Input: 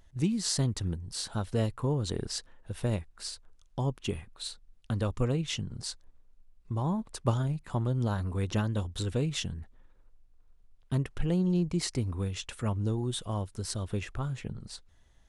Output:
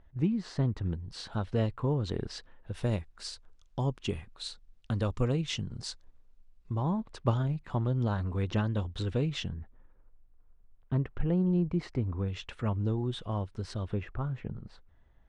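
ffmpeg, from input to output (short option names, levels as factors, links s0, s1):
-af "asetnsamples=n=441:p=0,asendcmd='0.86 lowpass f 3500;2.74 lowpass f 6500;6.75 lowpass f 3800;9.49 lowpass f 1800;12.28 lowpass f 3200;13.94 lowpass f 1800',lowpass=1900"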